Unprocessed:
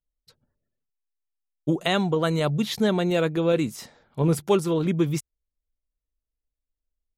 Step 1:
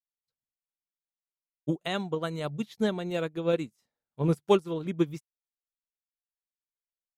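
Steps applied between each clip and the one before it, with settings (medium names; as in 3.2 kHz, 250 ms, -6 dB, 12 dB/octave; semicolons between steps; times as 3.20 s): upward expansion 2.5:1, over -39 dBFS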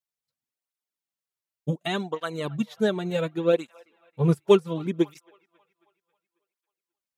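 feedback echo behind a band-pass 271 ms, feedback 50%, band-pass 1.4 kHz, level -21 dB; cancelling through-zero flanger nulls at 0.68 Hz, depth 4.3 ms; trim +6 dB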